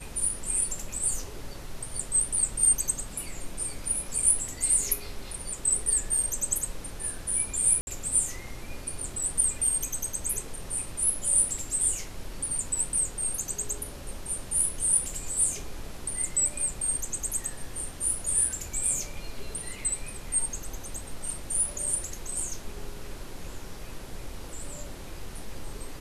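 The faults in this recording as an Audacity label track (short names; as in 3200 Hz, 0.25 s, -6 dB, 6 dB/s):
7.810000	7.870000	gap 61 ms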